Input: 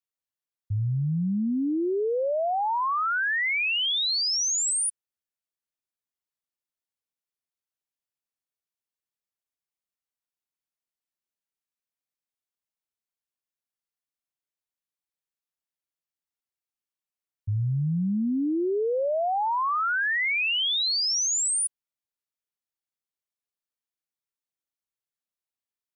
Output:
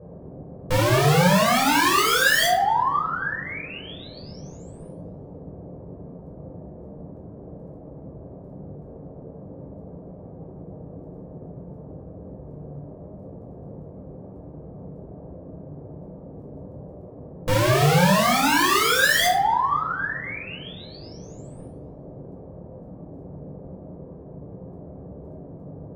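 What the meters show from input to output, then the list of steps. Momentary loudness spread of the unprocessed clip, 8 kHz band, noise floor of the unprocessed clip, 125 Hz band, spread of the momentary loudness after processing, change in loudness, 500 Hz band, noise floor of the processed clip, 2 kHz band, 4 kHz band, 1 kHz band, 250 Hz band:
5 LU, -3.0 dB, under -85 dBFS, +5.5 dB, 22 LU, +5.0 dB, +4.5 dB, -42 dBFS, +5.0 dB, +1.0 dB, +7.5 dB, +2.5 dB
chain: G.711 law mismatch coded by mu; treble ducked by the level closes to 610 Hz; in parallel at 0 dB: compressor 6:1, threshold -36 dBFS, peak gain reduction 11.5 dB; on the sum: wrapped overs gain 23 dB; band noise 43–550 Hz -49 dBFS; dark delay 0.265 s, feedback 37%, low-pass 3400 Hz, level -20.5 dB; shoebox room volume 800 m³, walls furnished, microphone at 5.6 m

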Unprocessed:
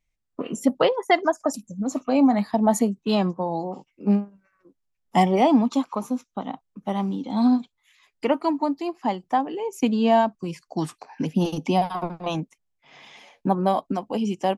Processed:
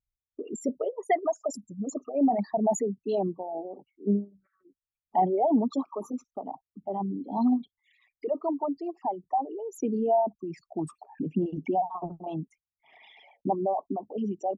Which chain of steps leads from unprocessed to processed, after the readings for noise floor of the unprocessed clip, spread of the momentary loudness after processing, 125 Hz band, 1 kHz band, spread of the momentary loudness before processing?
-77 dBFS, 13 LU, -8.5 dB, -5.0 dB, 12 LU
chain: formant sharpening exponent 3; notch comb 510 Hz; gain -5 dB

